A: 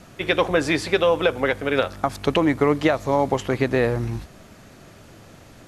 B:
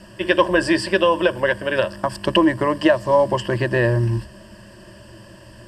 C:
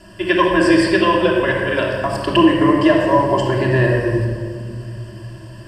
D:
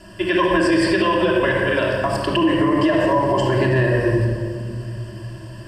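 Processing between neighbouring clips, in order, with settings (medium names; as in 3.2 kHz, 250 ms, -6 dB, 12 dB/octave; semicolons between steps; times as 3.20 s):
rippled EQ curve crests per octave 1.3, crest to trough 16 dB
simulated room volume 2700 m³, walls mixed, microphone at 3.1 m; trim -2 dB
loudness maximiser +8.5 dB; trim -8 dB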